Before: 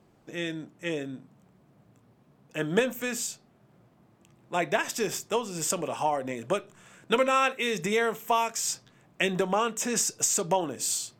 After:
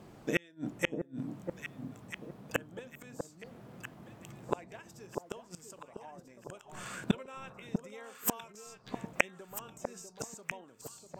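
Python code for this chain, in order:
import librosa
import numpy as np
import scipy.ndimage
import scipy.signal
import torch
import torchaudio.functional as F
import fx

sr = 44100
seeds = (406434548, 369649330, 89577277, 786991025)

y = fx.noise_reduce_blind(x, sr, reduce_db=7)
y = fx.gate_flip(y, sr, shuts_db=-28.0, range_db=-39)
y = fx.echo_alternate(y, sr, ms=646, hz=990.0, feedback_pct=54, wet_db=-4.5)
y = y * 10.0 ** (15.5 / 20.0)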